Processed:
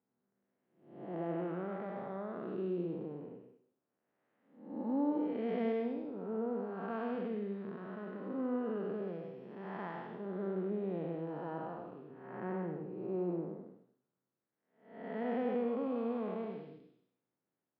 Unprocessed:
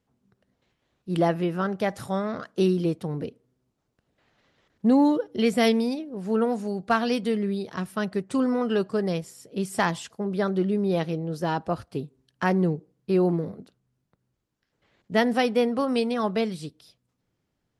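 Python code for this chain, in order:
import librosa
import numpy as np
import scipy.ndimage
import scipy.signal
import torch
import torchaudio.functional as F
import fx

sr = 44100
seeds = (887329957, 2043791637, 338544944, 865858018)

y = fx.spec_blur(x, sr, span_ms=356.0)
y = fx.bandpass_edges(y, sr, low_hz=250.0, high_hz=2100.0)
y = fx.air_absorb(y, sr, metres=260.0)
y = y + 10.0 ** (-8.5 / 20.0) * np.pad(y, (int(100 * sr / 1000.0), 0))[:len(y)]
y = F.gain(torch.from_numpy(y), -7.0).numpy()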